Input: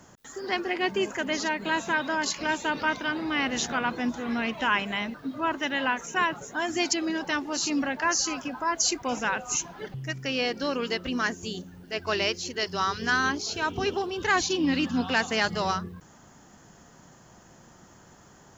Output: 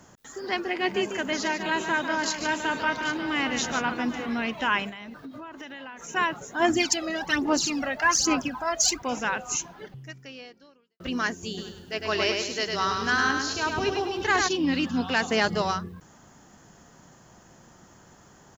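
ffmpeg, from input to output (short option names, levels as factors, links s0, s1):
-filter_complex "[0:a]asettb=1/sr,asplit=3[s0][s1][s2];[s0]atrim=end=0.654[s3];[s1]atrim=start=0.65:end=4.26,asetpts=PTS-STARTPTS,afade=t=in:d=0.004:c=qsin,afade=t=out:st=3.606:d=0.004:c=qsin,aecho=1:1:146|792:0.376|0.224,atrim=end_sample=159201[s4];[s2]atrim=start=4.256[s5];[s3][s4]acrossfade=d=0.004:c1=hsin:c2=qsin[s6];[s6][s5]acrossfade=d=0.004:c1=qsin:c2=hsin,asettb=1/sr,asplit=3[s7][s8][s9];[s7]atrim=end=4.894[s10];[s8]atrim=start=4.89:end=6.09,asetpts=PTS-STARTPTS,afade=t=in:d=0.004:c=qsin,afade=t=out:st=1.196:d=0.004:c=qsin,acompressor=threshold=0.0158:ratio=20:attack=3.2:release=140:knee=1:detection=peak[s11];[s9]atrim=start=6.086[s12];[s10][s11]acrossfade=d=0.004:c1=hsin:c2=qsin[s13];[s13][s12]acrossfade=d=0.004:c1=qsin:c2=hsin,asplit=3[s14][s15][s16];[s14]afade=t=out:st=6.59:d=0.02[s17];[s15]aphaser=in_gain=1:out_gain=1:delay=1.6:decay=0.67:speed=1.2:type=sinusoidal,afade=t=in:st=6.59:d=0.02,afade=t=out:st=8.98:d=0.02[s18];[s16]afade=t=in:st=8.98:d=0.02[s19];[s17][s18][s19]amix=inputs=3:normalize=0,asplit=3[s20][s21][s22];[s20]afade=t=out:st=11.57:d=0.02[s23];[s21]aecho=1:1:103|206|309|412|515:0.631|0.259|0.106|0.0435|0.0178,afade=t=in:st=11.57:d=0.02,afade=t=out:st=14.47:d=0.02[s24];[s22]afade=t=in:st=14.47:d=0.02[s25];[s23][s24][s25]amix=inputs=3:normalize=0,asettb=1/sr,asplit=3[s26][s27][s28];[s26]atrim=end=15.224[s29];[s27]atrim=start=15.22:end=15.62,asetpts=PTS-STARTPTS,afade=t=in:d=0.004:c=qsin,afade=t=out:st=0.396:d=0.004:c=qsin,equalizer=f=350:t=o:w=2.3:g=5.5[s30];[s28]atrim=start=15.616[s31];[s29][s30]acrossfade=d=0.004:c1=hsin:c2=qsin[s32];[s32][s31]acrossfade=d=0.004:c1=qsin:c2=hsin,asplit=2[s33][s34];[s33]atrim=end=11,asetpts=PTS-STARTPTS,afade=t=out:st=9.51:d=1.49:c=qua[s35];[s34]atrim=start=11,asetpts=PTS-STARTPTS,afade=t=in:d=0.004:c=hsin[s36];[s35][s36]concat=n=2:v=0:a=1"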